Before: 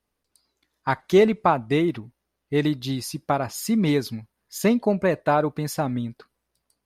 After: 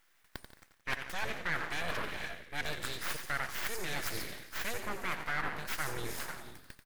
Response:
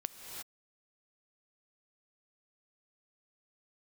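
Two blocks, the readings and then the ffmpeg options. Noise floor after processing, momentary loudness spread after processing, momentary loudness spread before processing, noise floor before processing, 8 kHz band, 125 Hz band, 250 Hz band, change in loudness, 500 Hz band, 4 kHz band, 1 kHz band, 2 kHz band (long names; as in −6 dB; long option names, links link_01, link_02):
−68 dBFS, 10 LU, 12 LU, −80 dBFS, −6.5 dB, −18.5 dB, −24.5 dB, −14.0 dB, −21.0 dB, −5.0 dB, −13.5 dB, −2.0 dB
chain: -filter_complex "[0:a]asplit=2[link_01][link_02];[1:a]atrim=start_sample=2205,adelay=147[link_03];[link_02][link_03]afir=irnorm=-1:irlink=0,volume=-15.5dB[link_04];[link_01][link_04]amix=inputs=2:normalize=0,acontrast=86,crystalizer=i=5.5:c=0,areverse,acompressor=threshold=-26dB:ratio=12,areverse,asplit=7[link_05][link_06][link_07][link_08][link_09][link_10][link_11];[link_06]adelay=88,afreqshift=-50,volume=-9dB[link_12];[link_07]adelay=176,afreqshift=-100,volume=-14.7dB[link_13];[link_08]adelay=264,afreqshift=-150,volume=-20.4dB[link_14];[link_09]adelay=352,afreqshift=-200,volume=-26dB[link_15];[link_10]adelay=440,afreqshift=-250,volume=-31.7dB[link_16];[link_11]adelay=528,afreqshift=-300,volume=-37.4dB[link_17];[link_05][link_12][link_13][link_14][link_15][link_16][link_17]amix=inputs=7:normalize=0,aeval=exprs='abs(val(0))':channel_layout=same,equalizer=frequency=1700:width=1.1:gain=11.5,volume=-8.5dB"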